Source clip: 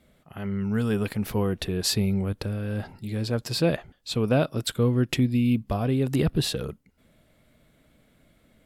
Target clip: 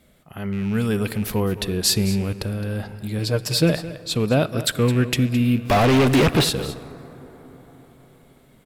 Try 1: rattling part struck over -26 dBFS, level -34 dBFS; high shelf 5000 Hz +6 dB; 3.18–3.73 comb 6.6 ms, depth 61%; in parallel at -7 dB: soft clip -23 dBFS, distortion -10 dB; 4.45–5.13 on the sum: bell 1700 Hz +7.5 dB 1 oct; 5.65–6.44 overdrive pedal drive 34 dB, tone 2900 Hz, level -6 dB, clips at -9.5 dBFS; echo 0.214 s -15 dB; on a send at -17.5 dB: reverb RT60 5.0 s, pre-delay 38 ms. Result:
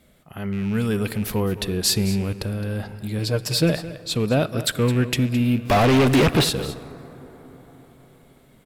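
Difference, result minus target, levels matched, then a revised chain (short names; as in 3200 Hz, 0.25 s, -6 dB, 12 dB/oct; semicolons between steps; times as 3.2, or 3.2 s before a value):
soft clip: distortion +14 dB
rattling part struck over -26 dBFS, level -34 dBFS; high shelf 5000 Hz +6 dB; 3.18–3.73 comb 6.6 ms, depth 61%; in parallel at -7 dB: soft clip -11 dBFS, distortion -24 dB; 4.45–5.13 on the sum: bell 1700 Hz +7.5 dB 1 oct; 5.65–6.44 overdrive pedal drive 34 dB, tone 2900 Hz, level -6 dB, clips at -9.5 dBFS; echo 0.214 s -15 dB; on a send at -17.5 dB: reverb RT60 5.0 s, pre-delay 38 ms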